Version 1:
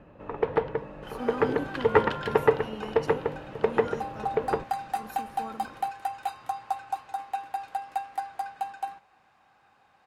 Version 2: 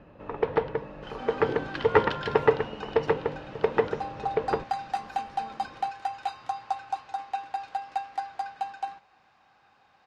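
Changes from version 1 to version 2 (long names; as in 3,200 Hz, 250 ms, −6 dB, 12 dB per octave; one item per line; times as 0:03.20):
speech −8.5 dB
master: add low-pass with resonance 5,300 Hz, resonance Q 1.5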